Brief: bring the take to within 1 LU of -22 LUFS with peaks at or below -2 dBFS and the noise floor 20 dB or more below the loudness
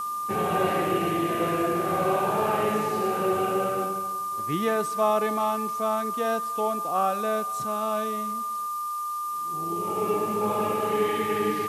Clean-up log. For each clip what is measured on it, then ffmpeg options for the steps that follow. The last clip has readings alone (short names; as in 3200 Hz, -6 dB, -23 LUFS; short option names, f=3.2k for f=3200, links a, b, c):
steady tone 1200 Hz; tone level -28 dBFS; noise floor -31 dBFS; noise floor target -47 dBFS; loudness -26.5 LUFS; peak -11.0 dBFS; loudness target -22.0 LUFS
-> -af "bandreject=f=1.2k:w=30"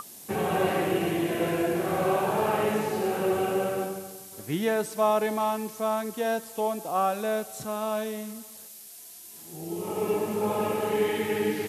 steady tone none; noise floor -46 dBFS; noise floor target -48 dBFS
-> -af "afftdn=nr=6:nf=-46"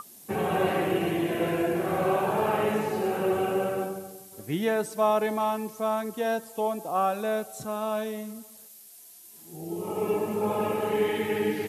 noise floor -50 dBFS; loudness -28.0 LUFS; peak -12.0 dBFS; loudness target -22.0 LUFS
-> -af "volume=6dB"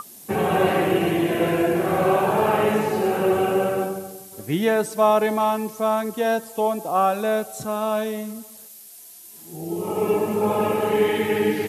loudness -22.0 LUFS; peak -6.0 dBFS; noise floor -44 dBFS